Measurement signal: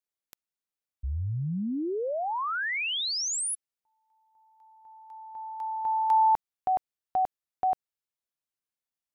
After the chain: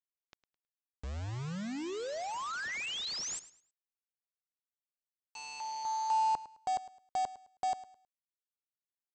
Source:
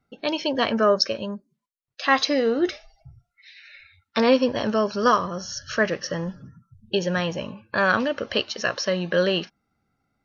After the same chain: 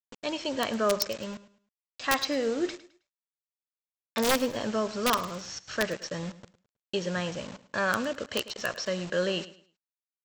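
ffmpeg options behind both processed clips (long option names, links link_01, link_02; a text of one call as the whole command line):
ffmpeg -i in.wav -af "aresample=16000,acrusher=bits=5:mix=0:aa=0.000001,aresample=44100,aeval=exprs='(mod(2.82*val(0)+1,2)-1)/2.82':channel_layout=same,aecho=1:1:106|212|318:0.15|0.0419|0.0117,volume=-7dB" out.wav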